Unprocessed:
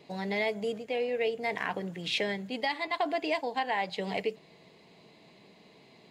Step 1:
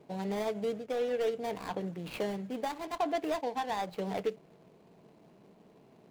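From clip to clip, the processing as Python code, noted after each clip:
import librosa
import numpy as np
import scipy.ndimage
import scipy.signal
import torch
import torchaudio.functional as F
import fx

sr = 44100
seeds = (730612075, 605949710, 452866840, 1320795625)

y = scipy.signal.medfilt(x, 25)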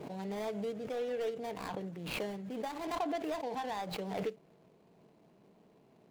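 y = fx.pre_swell(x, sr, db_per_s=39.0)
y = y * librosa.db_to_amplitude(-5.0)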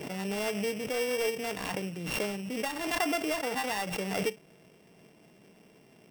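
y = np.r_[np.sort(x[:len(x) // 16 * 16].reshape(-1, 16), axis=1).ravel(), x[len(x) // 16 * 16:]]
y = y * librosa.db_to_amplitude(5.5)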